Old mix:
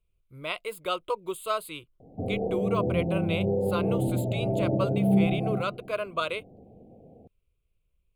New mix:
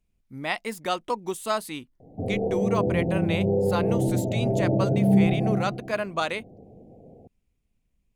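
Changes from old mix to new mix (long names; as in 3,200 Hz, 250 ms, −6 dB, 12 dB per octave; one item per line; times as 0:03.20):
speech: remove phaser with its sweep stopped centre 1,200 Hz, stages 8
background: send +9.0 dB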